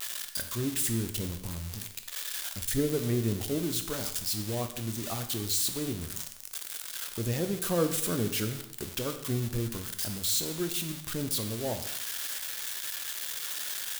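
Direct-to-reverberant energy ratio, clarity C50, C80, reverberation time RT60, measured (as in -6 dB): 7.0 dB, 10.0 dB, 12.0 dB, no single decay rate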